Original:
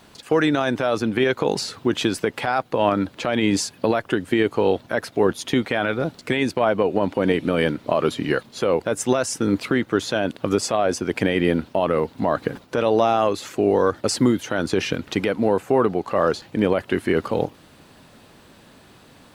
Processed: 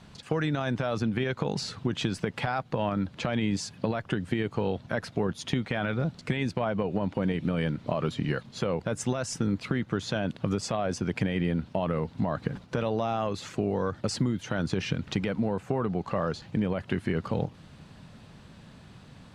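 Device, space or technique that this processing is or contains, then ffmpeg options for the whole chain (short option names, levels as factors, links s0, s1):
jukebox: -af "lowpass=7600,lowshelf=f=230:t=q:w=1.5:g=8,acompressor=threshold=0.1:ratio=4,volume=0.596"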